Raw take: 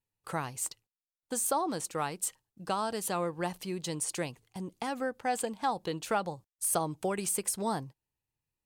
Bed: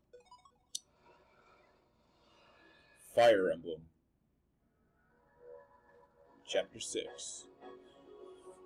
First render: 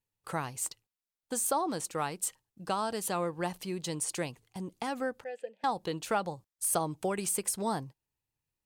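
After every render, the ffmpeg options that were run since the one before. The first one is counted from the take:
ffmpeg -i in.wav -filter_complex "[0:a]asettb=1/sr,asplit=3[link_01][link_02][link_03];[link_01]atrim=end=5.244[link_04];[link_02]atrim=start=5.24:end=5.64,asetpts=PTS-STARTPTS,afade=type=in:duration=0.004:curve=qsin,afade=type=out:start_time=0.396:duration=0.004:curve=qsin,asplit=3[link_05][link_06][link_07];[link_05]bandpass=frequency=530:width_type=q:width=8,volume=0dB[link_08];[link_06]bandpass=frequency=1840:width_type=q:width=8,volume=-6dB[link_09];[link_07]bandpass=frequency=2480:width_type=q:width=8,volume=-9dB[link_10];[link_08][link_09][link_10]amix=inputs=3:normalize=0[link_11];[link_03]atrim=start=5.636[link_12];[link_04][link_11]acrossfade=duration=0.004:curve1=hsin:curve2=qsin[link_13];[link_13][link_12]acrossfade=duration=0.004:curve1=qsin:curve2=hsin" out.wav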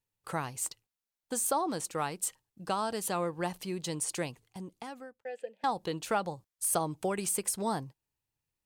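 ffmpeg -i in.wav -filter_complex "[0:a]asplit=2[link_01][link_02];[link_01]atrim=end=5.25,asetpts=PTS-STARTPTS,afade=type=out:start_time=4.31:duration=0.94[link_03];[link_02]atrim=start=5.25,asetpts=PTS-STARTPTS,afade=type=in:duration=0.004:curve=hsin[link_04];[link_03][link_04]concat=n=2:v=0:a=1" out.wav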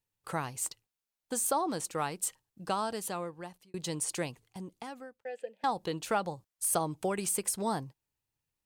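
ffmpeg -i in.wav -filter_complex "[0:a]asplit=2[link_01][link_02];[link_01]atrim=end=3.74,asetpts=PTS-STARTPTS,afade=type=out:start_time=2.77:duration=0.97[link_03];[link_02]atrim=start=3.74,asetpts=PTS-STARTPTS,afade=type=in:duration=0.004:curve=hsin[link_04];[link_03][link_04]concat=n=2:v=0:a=1" out.wav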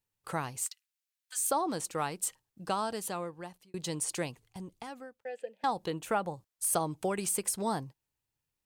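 ffmpeg -i in.wav -filter_complex "[0:a]asplit=3[link_01][link_02][link_03];[link_01]afade=type=out:start_time=0.64:duration=0.02[link_04];[link_02]highpass=frequency=1500:width=0.5412,highpass=frequency=1500:width=1.3066,afade=type=in:start_time=0.64:duration=0.02,afade=type=out:start_time=1.49:duration=0.02[link_05];[link_03]afade=type=in:start_time=1.49:duration=0.02[link_06];[link_04][link_05][link_06]amix=inputs=3:normalize=0,asplit=3[link_07][link_08][link_09];[link_07]afade=type=out:start_time=4.43:duration=0.02[link_10];[link_08]asubboost=boost=3:cutoff=120,afade=type=in:start_time=4.43:duration=0.02,afade=type=out:start_time=4.89:duration=0.02[link_11];[link_09]afade=type=in:start_time=4.89:duration=0.02[link_12];[link_10][link_11][link_12]amix=inputs=3:normalize=0,asettb=1/sr,asplit=3[link_13][link_14][link_15];[link_13]atrim=end=5.904[link_16];[link_14]atrim=start=5.9:end=6.34,asetpts=PTS-STARTPTS,afade=type=in:duration=0.004:curve=qsin,afade=type=out:start_time=0.436:duration=0.004:curve=qsin,equalizer=frequency=4600:width=1.4:gain=-10[link_17];[link_15]atrim=start=6.336[link_18];[link_16][link_17]acrossfade=duration=0.004:curve1=hsin:curve2=qsin[link_19];[link_19][link_18]acrossfade=duration=0.004:curve1=qsin:curve2=hsin" out.wav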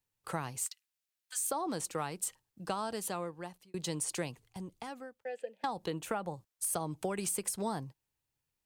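ffmpeg -i in.wav -filter_complex "[0:a]acrossover=split=150[link_01][link_02];[link_02]acompressor=threshold=-31dB:ratio=6[link_03];[link_01][link_03]amix=inputs=2:normalize=0" out.wav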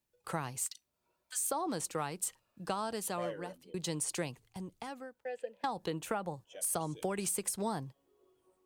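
ffmpeg -i in.wav -i bed.wav -filter_complex "[1:a]volume=-16dB[link_01];[0:a][link_01]amix=inputs=2:normalize=0" out.wav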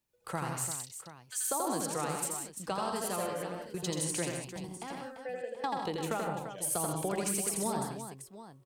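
ffmpeg -i in.wav -af "aecho=1:1:84|129|154|184|343|731:0.668|0.316|0.376|0.335|0.335|0.2" out.wav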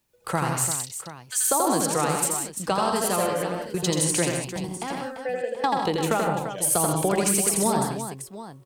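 ffmpeg -i in.wav -af "volume=10.5dB" out.wav

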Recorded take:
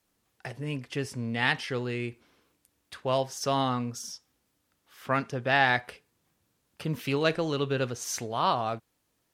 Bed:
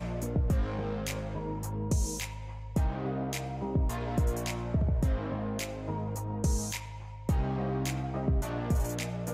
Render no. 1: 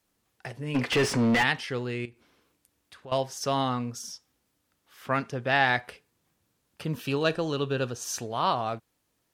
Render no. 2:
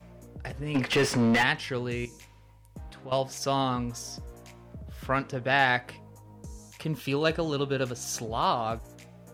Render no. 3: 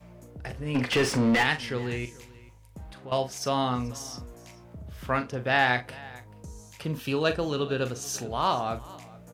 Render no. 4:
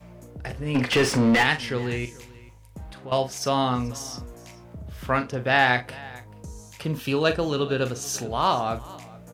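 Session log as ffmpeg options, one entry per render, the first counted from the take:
ffmpeg -i in.wav -filter_complex "[0:a]asplit=3[link_01][link_02][link_03];[link_01]afade=type=out:start_time=0.74:duration=0.02[link_04];[link_02]asplit=2[link_05][link_06];[link_06]highpass=frequency=720:poles=1,volume=32dB,asoftclip=type=tanh:threshold=-13.5dB[link_07];[link_05][link_07]amix=inputs=2:normalize=0,lowpass=frequency=2100:poles=1,volume=-6dB,afade=type=in:start_time=0.74:duration=0.02,afade=type=out:start_time=1.42:duration=0.02[link_08];[link_03]afade=type=in:start_time=1.42:duration=0.02[link_09];[link_04][link_08][link_09]amix=inputs=3:normalize=0,asettb=1/sr,asplit=3[link_10][link_11][link_12];[link_10]atrim=end=2.054[link_13];[link_11]atrim=start=2.05:end=3.12,asetpts=PTS-STARTPTS,afade=type=in:duration=0.004:curve=qsin,afade=type=out:start_time=1.066:duration=0.004:curve=qsin,acompressor=threshold=-51dB:ratio=2:attack=3.2:release=140:knee=1:detection=peak[link_14];[link_12]atrim=start=3.116[link_15];[link_13][link_14]acrossfade=duration=0.004:curve1=hsin:curve2=qsin[link_16];[link_16][link_15]acrossfade=duration=0.004:curve1=qsin:curve2=hsin,asettb=1/sr,asplit=3[link_17][link_18][link_19];[link_17]atrim=end=6.944[link_20];[link_18]atrim=start=6.94:end=8.27,asetpts=PTS-STARTPTS,afade=type=in:duration=0.004:curve=qsin,afade=type=out:start_time=1.326:duration=0.004:curve=qsin,asuperstop=centerf=2100:order=4:qfactor=5.5[link_21];[link_19]atrim=start=8.266[link_22];[link_20][link_21]acrossfade=duration=0.004:curve1=hsin:curve2=qsin[link_23];[link_23][link_22]acrossfade=duration=0.004:curve1=qsin:curve2=hsin" out.wav
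ffmpeg -i in.wav -i bed.wav -filter_complex "[1:a]volume=-15dB[link_01];[0:a][link_01]amix=inputs=2:normalize=0" out.wav
ffmpeg -i in.wav -filter_complex "[0:a]asplit=2[link_01][link_02];[link_02]adelay=40,volume=-11dB[link_03];[link_01][link_03]amix=inputs=2:normalize=0,aecho=1:1:435:0.0891" out.wav
ffmpeg -i in.wav -af "volume=3.5dB" out.wav

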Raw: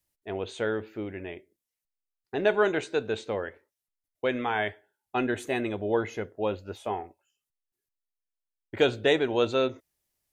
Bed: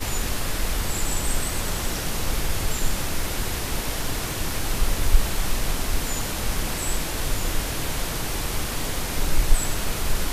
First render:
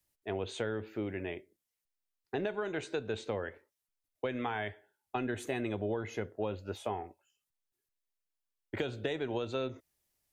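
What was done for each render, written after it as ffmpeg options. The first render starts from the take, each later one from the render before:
ffmpeg -i in.wav -filter_complex "[0:a]alimiter=limit=-17dB:level=0:latency=1:release=311,acrossover=split=170[link_01][link_02];[link_02]acompressor=threshold=-32dB:ratio=6[link_03];[link_01][link_03]amix=inputs=2:normalize=0" out.wav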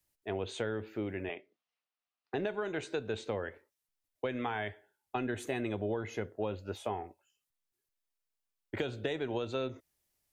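ffmpeg -i in.wav -filter_complex "[0:a]asettb=1/sr,asplit=3[link_01][link_02][link_03];[link_01]atrim=end=1.294[link_04];[link_02]atrim=start=1.29:end=2.34,asetpts=PTS-STARTPTS,afade=type=in:duration=0.004:curve=qsin,afade=type=out:start_time=1.046:duration=0.004:curve=qsin,highpass=240,equalizer=frequency=350:width_type=q:width=4:gain=-7,equalizer=frequency=730:width_type=q:width=4:gain=7,equalizer=frequency=1200:width_type=q:width=4:gain=8,equalizer=frequency=2700:width_type=q:width=4:gain=5,lowpass=frequency=4800:width=0.5412,lowpass=frequency=4800:width=1.3066[link_05];[link_03]atrim=start=2.336[link_06];[link_04][link_05]acrossfade=duration=0.004:curve1=hsin:curve2=qsin[link_07];[link_07][link_06]acrossfade=duration=0.004:curve1=qsin:curve2=hsin" out.wav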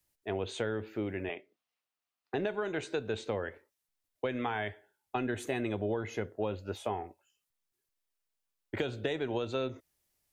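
ffmpeg -i in.wav -af "volume=1.5dB" out.wav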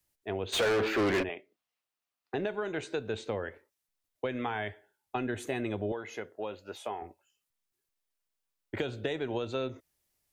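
ffmpeg -i in.wav -filter_complex "[0:a]asplit=3[link_01][link_02][link_03];[link_01]afade=type=out:start_time=0.52:duration=0.02[link_04];[link_02]asplit=2[link_05][link_06];[link_06]highpass=frequency=720:poles=1,volume=33dB,asoftclip=type=tanh:threshold=-20dB[link_07];[link_05][link_07]amix=inputs=2:normalize=0,lowpass=frequency=4000:poles=1,volume=-6dB,afade=type=in:start_time=0.52:duration=0.02,afade=type=out:start_time=1.22:duration=0.02[link_08];[link_03]afade=type=in:start_time=1.22:duration=0.02[link_09];[link_04][link_08][link_09]amix=inputs=3:normalize=0,asettb=1/sr,asplit=3[link_10][link_11][link_12];[link_10]atrim=end=5.924[link_13];[link_11]atrim=start=5.92:end=7.02,asetpts=PTS-STARTPTS,afade=type=in:duration=0.004:curve=qsin,afade=type=out:start_time=1.096:duration=0.004:curve=qsin,highpass=frequency=530:poles=1[link_14];[link_12]atrim=start=7.016[link_15];[link_13][link_14]acrossfade=duration=0.004:curve1=hsin:curve2=qsin[link_16];[link_16][link_15]acrossfade=duration=0.004:curve1=qsin:curve2=hsin" out.wav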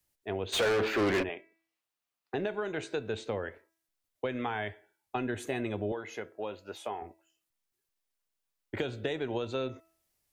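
ffmpeg -i in.wav -af "bandreject=frequency=327.7:width_type=h:width=4,bandreject=frequency=655.4:width_type=h:width=4,bandreject=frequency=983.1:width_type=h:width=4,bandreject=frequency=1310.8:width_type=h:width=4,bandreject=frequency=1638.5:width_type=h:width=4,bandreject=frequency=1966.2:width_type=h:width=4,bandreject=frequency=2293.9:width_type=h:width=4,bandreject=frequency=2621.6:width_type=h:width=4" out.wav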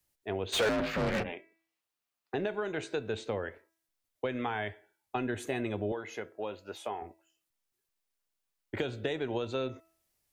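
ffmpeg -i in.wav -filter_complex "[0:a]asettb=1/sr,asplit=3[link_01][link_02][link_03];[link_01]atrim=end=0.694[link_04];[link_02]atrim=start=0.69:end=1.33,asetpts=PTS-STARTPTS,afade=type=in:duration=0.004:curve=qsin,afade=type=out:start_time=0.636:duration=0.004:curve=qsin,aeval=exprs='val(0)*sin(2*PI*170*n/s)':channel_layout=same[link_05];[link_03]atrim=start=1.326[link_06];[link_04][link_05]acrossfade=duration=0.004:curve1=hsin:curve2=qsin[link_07];[link_07][link_06]acrossfade=duration=0.004:curve1=qsin:curve2=hsin" out.wav

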